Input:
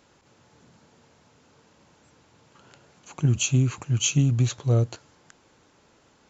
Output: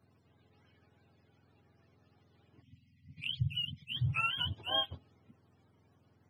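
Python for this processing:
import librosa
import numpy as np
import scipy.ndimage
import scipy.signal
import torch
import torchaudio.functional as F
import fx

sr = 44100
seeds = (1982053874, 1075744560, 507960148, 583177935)

y = fx.octave_mirror(x, sr, pivot_hz=610.0)
y = fx.spec_box(y, sr, start_s=2.62, length_s=1.34, low_hz=270.0, high_hz=1900.0, gain_db=-27)
y = fx.env_flanger(y, sr, rest_ms=4.3, full_db=-19.5, at=(3.21, 3.89))
y = y * 10.0 ** (-8.5 / 20.0)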